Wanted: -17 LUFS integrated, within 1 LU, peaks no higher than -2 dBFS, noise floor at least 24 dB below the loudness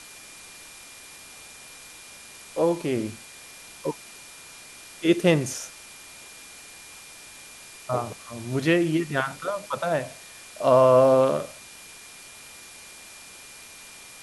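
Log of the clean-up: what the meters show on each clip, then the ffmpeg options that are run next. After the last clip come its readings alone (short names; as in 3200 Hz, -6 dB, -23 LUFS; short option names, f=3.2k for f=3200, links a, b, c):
steady tone 2400 Hz; tone level -50 dBFS; noise floor -46 dBFS; noise floor target -48 dBFS; loudness -23.5 LUFS; peak -5.5 dBFS; loudness target -17.0 LUFS
-> -af "bandreject=f=2.4k:w=30"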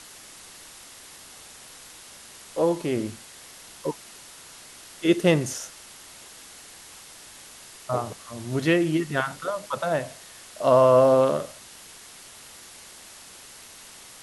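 steady tone none; noise floor -46 dBFS; noise floor target -48 dBFS
-> -af "afftdn=nr=6:nf=-46"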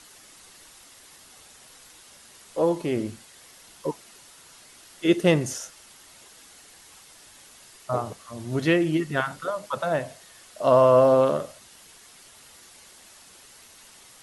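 noise floor -51 dBFS; loudness -23.5 LUFS; peak -6.0 dBFS; loudness target -17.0 LUFS
-> -af "volume=6.5dB,alimiter=limit=-2dB:level=0:latency=1"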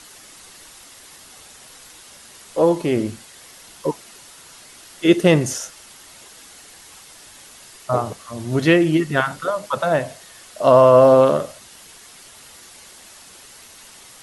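loudness -17.5 LUFS; peak -2.0 dBFS; noise floor -45 dBFS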